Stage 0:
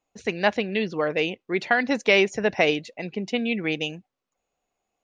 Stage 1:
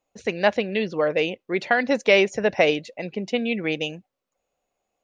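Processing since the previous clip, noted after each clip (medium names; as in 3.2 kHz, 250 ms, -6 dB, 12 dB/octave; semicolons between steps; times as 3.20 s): peaking EQ 550 Hz +6.5 dB 0.38 oct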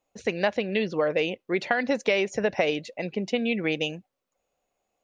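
compression 6:1, threshold -20 dBFS, peak gain reduction 8.5 dB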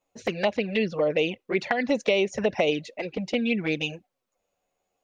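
touch-sensitive flanger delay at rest 11 ms, full sweep at -20 dBFS; trim +3 dB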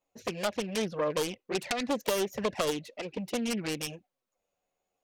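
self-modulated delay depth 0.52 ms; trim -5 dB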